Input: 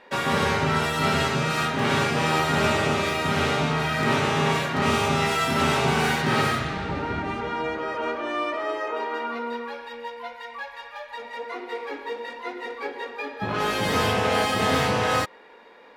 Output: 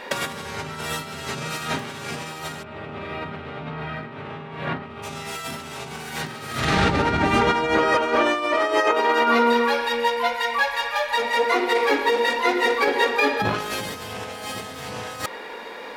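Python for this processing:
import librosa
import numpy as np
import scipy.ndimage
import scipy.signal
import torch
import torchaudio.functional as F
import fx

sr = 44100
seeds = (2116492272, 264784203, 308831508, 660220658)

y = fx.high_shelf(x, sr, hz=5100.0, db=10.5)
y = fx.over_compress(y, sr, threshold_db=-30.0, ratio=-0.5)
y = fx.air_absorb(y, sr, metres=450.0, at=(2.62, 5.02), fade=0.02)
y = y * librosa.db_to_amplitude(7.0)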